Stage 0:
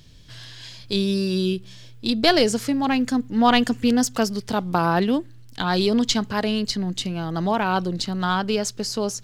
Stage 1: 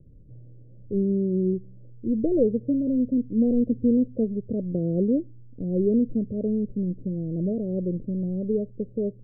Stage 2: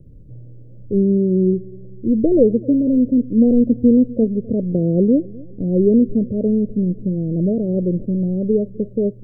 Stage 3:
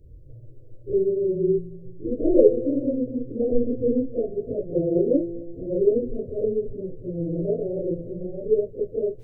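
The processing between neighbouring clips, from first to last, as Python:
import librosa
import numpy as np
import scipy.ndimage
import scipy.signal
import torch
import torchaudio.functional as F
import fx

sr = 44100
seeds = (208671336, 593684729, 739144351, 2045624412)

y1 = scipy.signal.sosfilt(scipy.signal.butter(16, 580.0, 'lowpass', fs=sr, output='sos'), x)
y1 = y1 * librosa.db_to_amplitude(-1.0)
y2 = fx.echo_feedback(y1, sr, ms=253, feedback_pct=46, wet_db=-22.0)
y2 = y2 * librosa.db_to_amplitude(8.0)
y3 = fx.phase_scramble(y2, sr, seeds[0], window_ms=100)
y3 = fx.fixed_phaser(y3, sr, hz=490.0, stages=4)
y3 = fx.comb_fb(y3, sr, f0_hz=170.0, decay_s=1.5, harmonics='all', damping=0.0, mix_pct=70)
y3 = y3 * librosa.db_to_amplitude(8.0)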